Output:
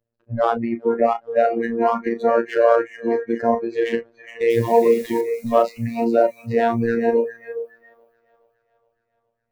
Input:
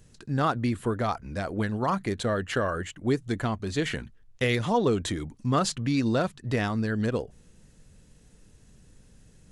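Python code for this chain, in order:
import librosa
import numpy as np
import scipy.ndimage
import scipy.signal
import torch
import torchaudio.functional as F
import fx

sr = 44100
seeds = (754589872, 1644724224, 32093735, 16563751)

p1 = scipy.signal.sosfilt(scipy.signal.butter(2, 2000.0, 'lowpass', fs=sr, output='sos'), x)
p2 = fx.power_curve(p1, sr, exponent=1.4)
p3 = fx.low_shelf(p2, sr, hz=150.0, db=-4.0)
p4 = fx.over_compress(p3, sr, threshold_db=-34.0, ratio=-0.5)
p5 = p3 + (p4 * 10.0 ** (2.5 / 20.0))
p6 = fx.peak_eq(p5, sr, hz=570.0, db=14.5, octaves=0.9)
p7 = fx.doubler(p6, sr, ms=35.0, db=-10)
p8 = fx.robotise(p7, sr, hz=116.0)
p9 = fx.quant_dither(p8, sr, seeds[0], bits=8, dither='triangular', at=(4.5, 5.21))
p10 = p9 + fx.echo_thinned(p9, sr, ms=418, feedback_pct=61, hz=350.0, wet_db=-7.5, dry=0)
p11 = fx.noise_reduce_blind(p10, sr, reduce_db=23)
y = p11 * 10.0 ** (3.5 / 20.0)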